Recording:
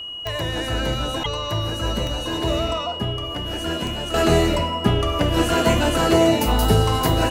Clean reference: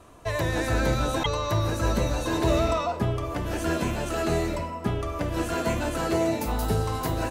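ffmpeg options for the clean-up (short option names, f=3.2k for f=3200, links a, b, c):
-af "adeclick=t=4,bandreject=f=2.9k:w=30,asetnsamples=n=441:p=0,asendcmd='4.14 volume volume -8.5dB',volume=0dB"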